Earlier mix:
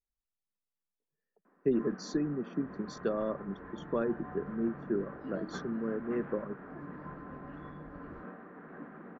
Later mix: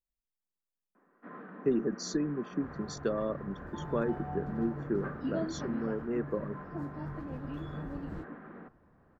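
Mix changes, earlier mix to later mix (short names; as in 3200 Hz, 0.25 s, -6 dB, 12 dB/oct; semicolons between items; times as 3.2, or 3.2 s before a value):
first sound: entry -0.50 s; second sound +9.5 dB; master: remove air absorption 120 m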